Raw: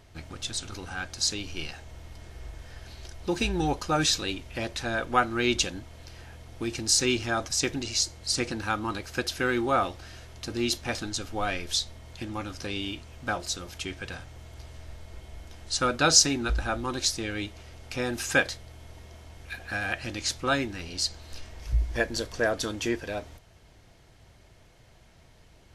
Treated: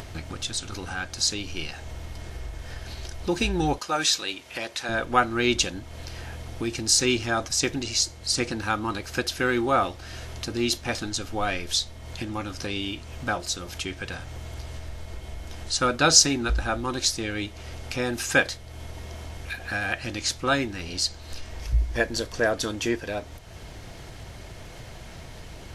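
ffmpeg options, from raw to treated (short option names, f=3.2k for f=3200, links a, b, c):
-filter_complex "[0:a]asettb=1/sr,asplit=3[a][b][c];[a]atrim=end=3.784[d];[b]atrim=start=3.78:end=4.89,asetpts=PTS-STARTPTS,afade=t=in:d=0.004:c=qsin,afade=t=out:st=1.106:d=0.004:c=qsin,highpass=f=680:p=1[e];[c]atrim=start=4.886[f];[d][e]acrossfade=d=0.004:c1=hsin:c2=qsin[g];[g][f]acrossfade=d=0.004:c1=qsin:c2=hsin,acompressor=mode=upward:threshold=-31dB:ratio=2.5,volume=2.5dB"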